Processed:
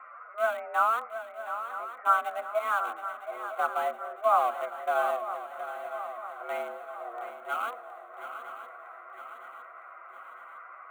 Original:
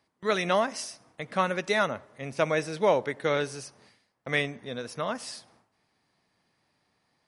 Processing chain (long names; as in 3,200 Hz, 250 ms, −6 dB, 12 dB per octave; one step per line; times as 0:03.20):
spike at every zero crossing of −17 dBFS
Butterworth low-pass 1,400 Hz 48 dB per octave
tilt shelving filter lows −6.5 dB, about 670 Hz
phase-vocoder stretch with locked phases 1.5×
in parallel at −8 dB: centre clipping without the shift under −27.5 dBFS
on the sum: phaser with its sweep stopped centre 990 Hz, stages 8
on a send: feedback echo with a long and a short gap by turns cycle 959 ms, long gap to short 3 to 1, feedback 52%, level −10.5 dB
on the sum: frequency shifter +230 Hz